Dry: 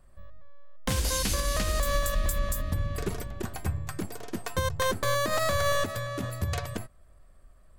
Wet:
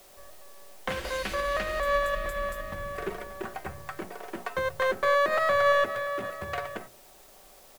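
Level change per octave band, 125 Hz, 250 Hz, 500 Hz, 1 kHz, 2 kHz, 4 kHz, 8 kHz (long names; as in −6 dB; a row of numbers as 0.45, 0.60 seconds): −13.5, −6.0, +4.0, +4.0, +4.5, −4.5, −13.0 decibels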